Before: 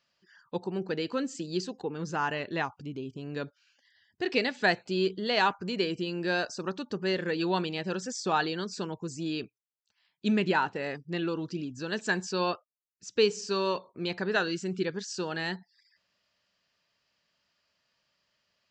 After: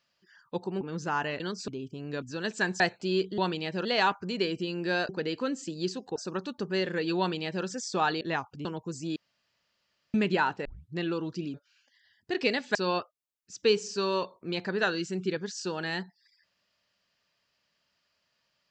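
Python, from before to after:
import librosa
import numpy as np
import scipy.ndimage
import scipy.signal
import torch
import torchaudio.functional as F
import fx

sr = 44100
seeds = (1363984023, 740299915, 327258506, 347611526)

y = fx.edit(x, sr, fx.move(start_s=0.81, length_s=1.07, to_s=6.48),
    fx.swap(start_s=2.47, length_s=0.44, other_s=8.53, other_length_s=0.28),
    fx.swap(start_s=3.45, length_s=1.21, other_s=11.7, other_length_s=0.58),
    fx.duplicate(start_s=7.5, length_s=0.47, to_s=5.24),
    fx.room_tone_fill(start_s=9.32, length_s=0.98),
    fx.tape_start(start_s=10.81, length_s=0.31), tone=tone)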